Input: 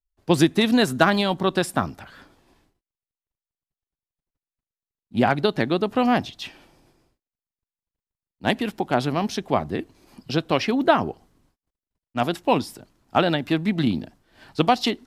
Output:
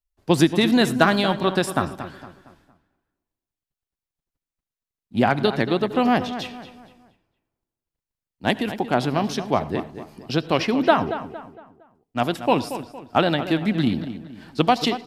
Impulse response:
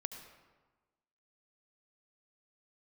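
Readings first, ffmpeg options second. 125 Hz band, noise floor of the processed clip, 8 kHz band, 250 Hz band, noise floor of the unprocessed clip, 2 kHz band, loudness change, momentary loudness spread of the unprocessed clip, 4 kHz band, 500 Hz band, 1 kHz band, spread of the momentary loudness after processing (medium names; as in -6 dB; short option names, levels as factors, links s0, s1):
+1.0 dB, under -85 dBFS, +0.5 dB, +1.0 dB, under -85 dBFS, +1.0 dB, +0.5 dB, 13 LU, +0.5 dB, +1.0 dB, +1.0 dB, 15 LU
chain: -filter_complex "[0:a]asplit=2[s0][s1];[s1]adelay=230,lowpass=f=3100:p=1,volume=0.266,asplit=2[s2][s3];[s3]adelay=230,lowpass=f=3100:p=1,volume=0.39,asplit=2[s4][s5];[s5]adelay=230,lowpass=f=3100:p=1,volume=0.39,asplit=2[s6][s7];[s7]adelay=230,lowpass=f=3100:p=1,volume=0.39[s8];[s0][s2][s4][s6][s8]amix=inputs=5:normalize=0,asplit=2[s9][s10];[1:a]atrim=start_sample=2205,afade=t=out:st=0.17:d=0.01,atrim=end_sample=7938[s11];[s10][s11]afir=irnorm=-1:irlink=0,volume=0.668[s12];[s9][s12]amix=inputs=2:normalize=0,volume=0.708"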